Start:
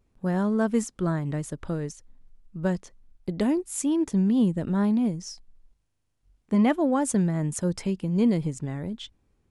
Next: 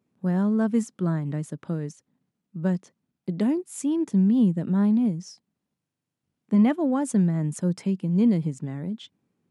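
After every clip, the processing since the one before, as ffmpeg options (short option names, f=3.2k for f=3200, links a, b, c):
-af "highpass=f=160:w=0.5412,highpass=f=160:w=1.3066,bass=f=250:g=10,treble=f=4k:g=-2,volume=-3.5dB"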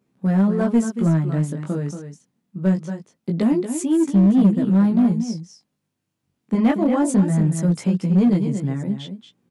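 -filter_complex "[0:a]aecho=1:1:231:0.355,flanger=delay=15:depth=6.8:speed=0.23,asplit=2[a][b];[b]aeval=exprs='0.075*(abs(mod(val(0)/0.075+3,4)-2)-1)':c=same,volume=-9dB[c];[a][c]amix=inputs=2:normalize=0,volume=6dB"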